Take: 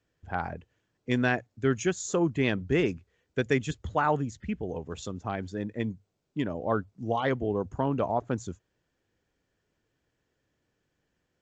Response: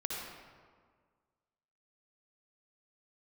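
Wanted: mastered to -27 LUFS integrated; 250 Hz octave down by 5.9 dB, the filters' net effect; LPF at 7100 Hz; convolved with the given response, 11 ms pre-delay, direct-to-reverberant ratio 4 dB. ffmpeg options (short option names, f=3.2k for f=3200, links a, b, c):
-filter_complex "[0:a]lowpass=7.1k,equalizer=f=250:t=o:g=-8,asplit=2[a][b];[1:a]atrim=start_sample=2205,adelay=11[c];[b][c]afir=irnorm=-1:irlink=0,volume=-7dB[d];[a][d]amix=inputs=2:normalize=0,volume=4.5dB"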